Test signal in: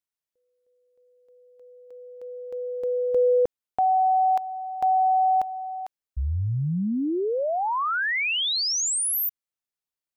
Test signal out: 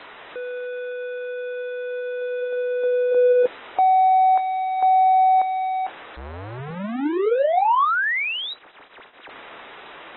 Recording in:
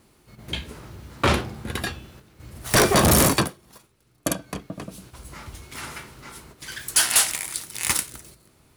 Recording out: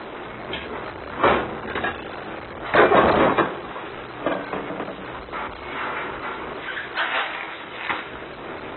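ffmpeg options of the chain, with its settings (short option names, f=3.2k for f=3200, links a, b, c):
-filter_complex "[0:a]aeval=exprs='val(0)+0.5*0.0531*sgn(val(0))':c=same,acrossover=split=310 2200:gain=0.126 1 0.224[a][b][c];[a][b][c]amix=inputs=3:normalize=0,volume=3dB" -ar 24000 -c:a aac -b:a 16k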